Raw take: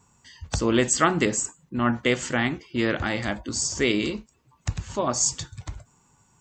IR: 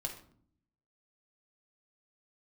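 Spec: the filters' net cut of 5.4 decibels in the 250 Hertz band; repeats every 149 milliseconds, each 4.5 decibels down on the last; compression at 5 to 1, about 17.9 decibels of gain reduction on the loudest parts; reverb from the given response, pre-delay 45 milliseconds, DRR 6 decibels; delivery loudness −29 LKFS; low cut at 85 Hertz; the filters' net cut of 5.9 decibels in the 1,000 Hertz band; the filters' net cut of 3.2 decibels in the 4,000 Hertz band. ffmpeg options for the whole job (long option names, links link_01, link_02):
-filter_complex "[0:a]highpass=85,equalizer=frequency=250:width_type=o:gain=-6.5,equalizer=frequency=1000:width_type=o:gain=-7.5,equalizer=frequency=4000:width_type=o:gain=-4,acompressor=threshold=-41dB:ratio=5,aecho=1:1:149|298|447|596|745|894|1043|1192|1341:0.596|0.357|0.214|0.129|0.0772|0.0463|0.0278|0.0167|0.01,asplit=2[link_01][link_02];[1:a]atrim=start_sample=2205,adelay=45[link_03];[link_02][link_03]afir=irnorm=-1:irlink=0,volume=-6dB[link_04];[link_01][link_04]amix=inputs=2:normalize=0,volume=11.5dB"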